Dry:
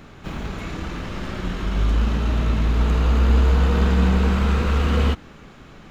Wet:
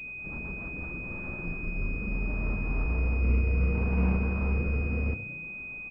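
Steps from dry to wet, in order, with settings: rotary cabinet horn 8 Hz, later 0.65 Hz, at 0.32 s; de-hum 54.48 Hz, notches 28; on a send: frequency-shifting echo 112 ms, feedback 57%, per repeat +30 Hz, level -15 dB; 1.40–2.86 s: on the sum: frequency shift -15 Hz; class-D stage that switches slowly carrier 2.5 kHz; trim -7.5 dB

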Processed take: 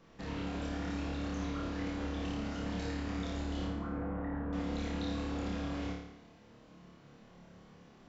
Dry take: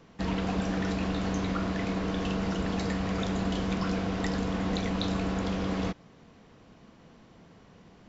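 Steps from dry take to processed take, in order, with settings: 3.65–4.53 s: low-pass 1.6 kHz 24 dB/octave; peak limiter -27 dBFS, peak gain reduction 8.5 dB; flange 0.73 Hz, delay 5 ms, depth 8.5 ms, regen +67%; flutter echo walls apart 4.8 m, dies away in 0.77 s; trim -2.5 dB

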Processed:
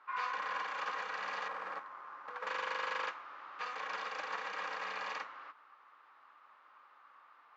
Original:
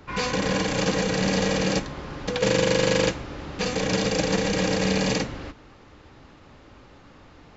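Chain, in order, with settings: 1.48–2.47 s: median filter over 15 samples; ladder band-pass 1.3 kHz, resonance 60%; trim +1.5 dB

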